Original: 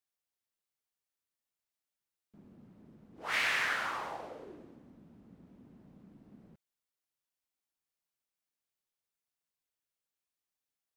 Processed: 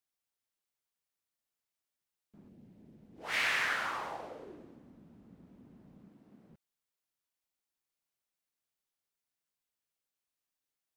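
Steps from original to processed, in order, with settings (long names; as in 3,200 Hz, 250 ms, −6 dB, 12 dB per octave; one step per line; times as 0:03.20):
0:02.48–0:03.37: parametric band 1,200 Hz −13.5 dB → −5 dB 0.78 octaves
0:06.08–0:06.50: high-pass filter 220 Hz 6 dB per octave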